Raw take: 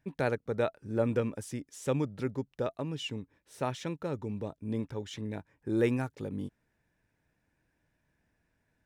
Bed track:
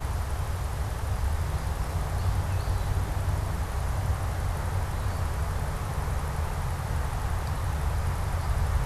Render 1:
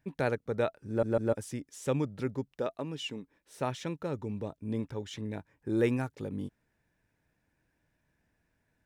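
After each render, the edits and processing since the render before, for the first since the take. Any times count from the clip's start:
0:00.88: stutter in place 0.15 s, 3 plays
0:02.54–0:03.60: parametric band 97 Hz −14 dB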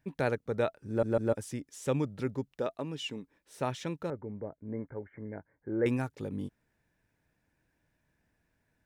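0:04.10–0:05.86: Chebyshev low-pass with heavy ripple 2,200 Hz, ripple 6 dB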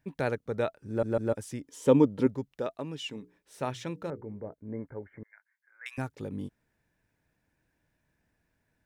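0:01.64–0:02.27: hollow resonant body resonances 280/460/930/3,100 Hz, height 12 dB, ringing for 25 ms
0:03.05–0:04.54: mains-hum notches 60/120/180/240/300/360/420/480 Hz
0:05.23–0:05.98: inverse Chebyshev high-pass filter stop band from 260 Hz, stop band 80 dB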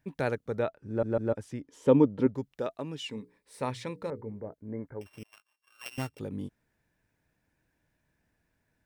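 0:00.59–0:02.35: low-pass filter 2,400 Hz 6 dB per octave
0:03.05–0:04.30: EQ curve with evenly spaced ripples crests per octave 0.94, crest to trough 7 dB
0:05.01–0:06.19: samples sorted by size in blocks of 16 samples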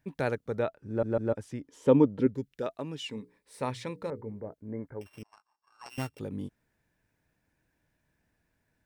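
0:02.19–0:02.63: flat-topped bell 850 Hz −11 dB 1.2 octaves
0:05.22–0:05.90: drawn EQ curve 400 Hz 0 dB, 570 Hz −4 dB, 830 Hz +12 dB, 1,300 Hz +2 dB, 3,100 Hz −16 dB, 4,700 Hz −1 dB, 9,600 Hz −12 dB, 14,000 Hz −27 dB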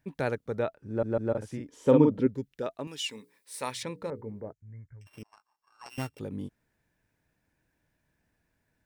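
0:01.30–0:02.18: double-tracking delay 47 ms −3.5 dB
0:02.87–0:03.83: spectral tilt +3.5 dB per octave
0:04.52–0:05.07: drawn EQ curve 120 Hz 0 dB, 200 Hz −18 dB, 330 Hz −26 dB, 810 Hz −27 dB, 1,900 Hz −7 dB, 3,100 Hz −12 dB, 4,800 Hz −9 dB, 7,000 Hz 0 dB, 11,000 Hz −19 dB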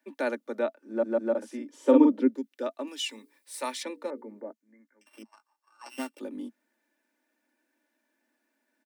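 Butterworth high-pass 220 Hz 96 dB per octave
comb filter 3.4 ms, depth 51%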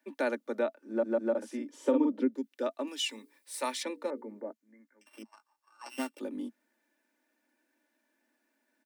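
downward compressor 3 to 1, threshold −25 dBFS, peak gain reduction 9 dB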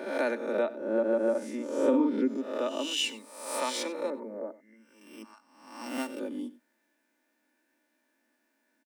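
peak hold with a rise ahead of every peak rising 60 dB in 0.81 s
single-tap delay 94 ms −18 dB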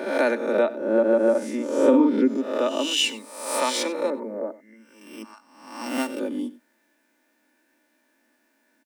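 level +7.5 dB

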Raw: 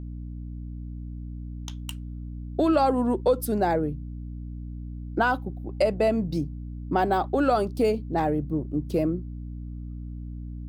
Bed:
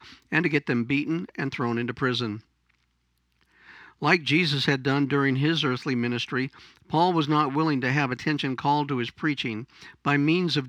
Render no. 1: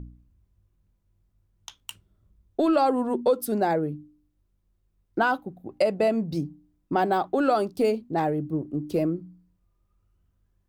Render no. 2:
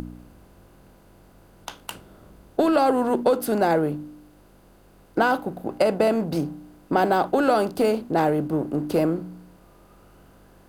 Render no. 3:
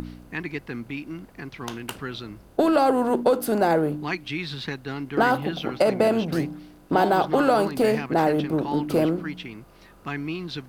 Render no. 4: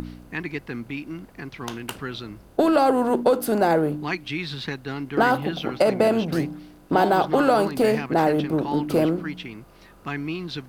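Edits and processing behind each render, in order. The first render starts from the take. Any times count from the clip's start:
hum removal 60 Hz, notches 5
compressor on every frequency bin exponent 0.6
mix in bed −8.5 dB
level +1 dB

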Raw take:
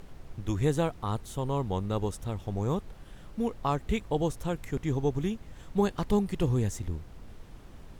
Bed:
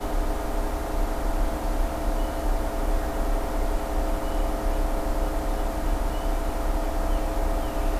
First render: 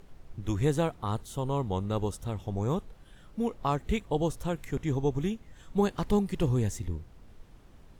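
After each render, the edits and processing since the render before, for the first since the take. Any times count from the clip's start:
noise reduction from a noise print 6 dB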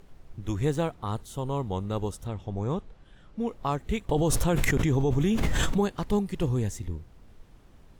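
0:00.65–0:01.07: running median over 3 samples
0:02.27–0:03.48: high-frequency loss of the air 67 metres
0:04.09–0:05.78: envelope flattener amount 100%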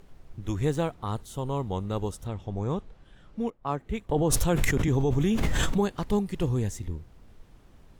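0:03.50–0:04.88: multiband upward and downward expander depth 70%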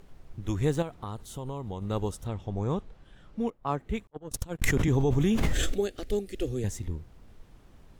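0:00.82–0:01.82: downward compressor 4 to 1, threshold −32 dBFS
0:04.07–0:04.64: noise gate −21 dBFS, range −49 dB
0:05.53–0:06.64: phaser with its sweep stopped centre 400 Hz, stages 4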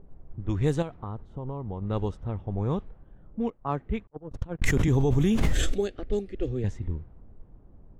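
low-pass that shuts in the quiet parts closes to 650 Hz, open at −20 dBFS
low-shelf EQ 200 Hz +3.5 dB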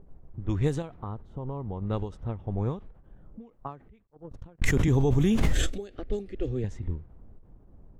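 every ending faded ahead of time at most 150 dB per second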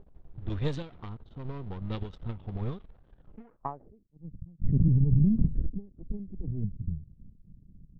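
gain on one half-wave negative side −12 dB
low-pass filter sweep 3,700 Hz → 180 Hz, 0:03.26–0:04.18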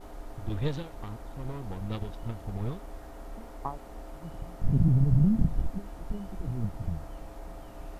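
mix in bed −17.5 dB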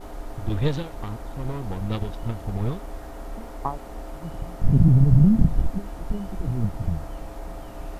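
level +7 dB

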